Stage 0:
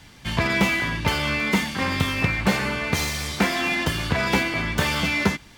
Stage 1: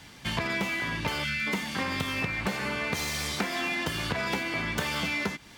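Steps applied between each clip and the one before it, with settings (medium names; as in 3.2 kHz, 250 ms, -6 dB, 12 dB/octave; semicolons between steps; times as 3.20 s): time-frequency box 1.24–1.47 s, 220–1300 Hz -19 dB; bass shelf 87 Hz -10 dB; compression, threshold -27 dBFS, peak gain reduction 11 dB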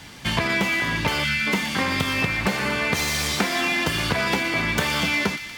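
feedback echo behind a high-pass 119 ms, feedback 71%, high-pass 2.1 kHz, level -9.5 dB; trim +7 dB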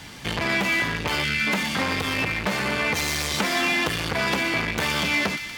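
transformer saturation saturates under 1.7 kHz; trim +1.5 dB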